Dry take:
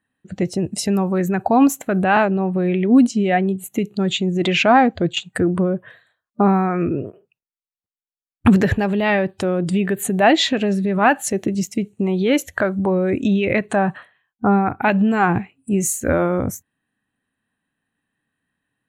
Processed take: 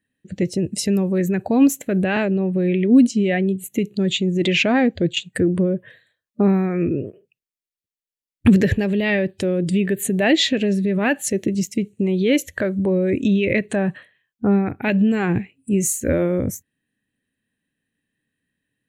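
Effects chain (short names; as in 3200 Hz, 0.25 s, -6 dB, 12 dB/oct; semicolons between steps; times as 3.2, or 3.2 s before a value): band shelf 1000 Hz -12 dB 1.3 oct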